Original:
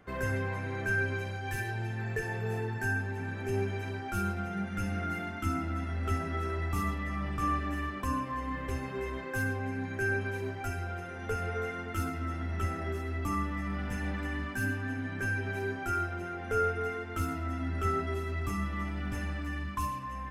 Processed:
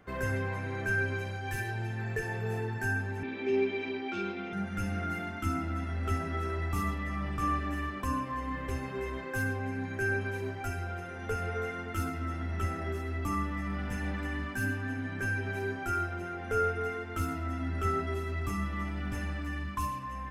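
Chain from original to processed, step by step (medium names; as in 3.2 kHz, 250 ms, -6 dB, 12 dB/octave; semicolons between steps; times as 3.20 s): 3.23–4.53 s: cabinet simulation 270–4800 Hz, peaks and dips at 270 Hz +9 dB, 390 Hz +6 dB, 680 Hz -4 dB, 1.5 kHz -7 dB, 2.3 kHz +8 dB, 3.5 kHz +9 dB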